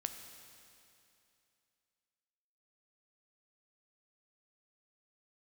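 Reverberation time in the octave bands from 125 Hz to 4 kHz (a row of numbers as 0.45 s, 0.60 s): 2.7 s, 2.7 s, 2.7 s, 2.7 s, 2.7 s, 2.7 s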